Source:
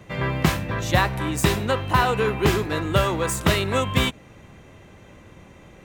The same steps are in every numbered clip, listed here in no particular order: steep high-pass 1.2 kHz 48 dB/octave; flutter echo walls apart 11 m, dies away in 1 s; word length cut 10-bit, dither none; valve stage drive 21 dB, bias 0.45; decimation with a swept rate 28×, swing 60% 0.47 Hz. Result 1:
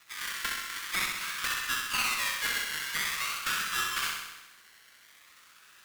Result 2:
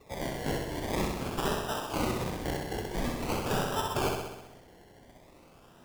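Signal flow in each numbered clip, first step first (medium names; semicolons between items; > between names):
decimation with a swept rate > steep high-pass > word length cut > valve stage > flutter echo; word length cut > valve stage > steep high-pass > decimation with a swept rate > flutter echo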